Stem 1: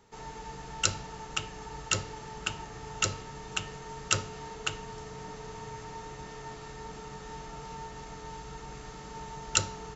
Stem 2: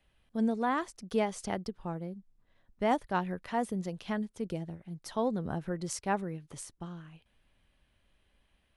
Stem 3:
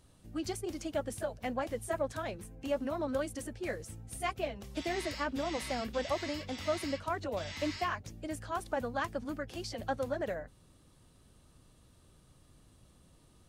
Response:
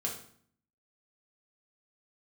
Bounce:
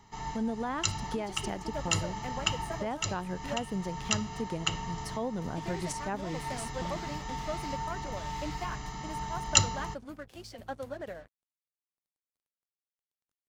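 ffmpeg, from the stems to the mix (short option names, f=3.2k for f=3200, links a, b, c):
-filter_complex "[0:a]aecho=1:1:1:0.73,volume=2dB[a];[1:a]volume=2.5dB,asplit=2[b][c];[2:a]adelay=800,volume=-4dB,asplit=3[d][e][f];[d]atrim=end=3.64,asetpts=PTS-STARTPTS,afade=t=out:st=3.636:d=0.004:c=hsin[g];[e]atrim=start=3.64:end=5.35,asetpts=PTS-STARTPTS,volume=0[h];[f]atrim=start=5.35,asetpts=PTS-STARTPTS,afade=t=in:d=0.004:c=hsin[i];[g][h][i]concat=n=3:v=0:a=1[j];[c]apad=whole_len=439000[k];[a][k]sidechaincompress=threshold=-32dB:ratio=8:attack=16:release=353[l];[b][j]amix=inputs=2:normalize=0,aeval=exprs='sgn(val(0))*max(abs(val(0))-0.00158,0)':c=same,alimiter=level_in=0.5dB:limit=-24dB:level=0:latency=1:release=239,volume=-0.5dB,volume=0dB[m];[l][m]amix=inputs=2:normalize=0"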